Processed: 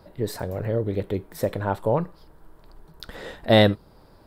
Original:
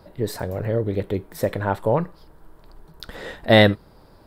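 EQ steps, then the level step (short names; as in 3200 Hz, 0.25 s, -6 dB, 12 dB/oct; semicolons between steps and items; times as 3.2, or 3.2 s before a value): dynamic EQ 1900 Hz, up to -5 dB, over -40 dBFS, Q 2.1; -2.0 dB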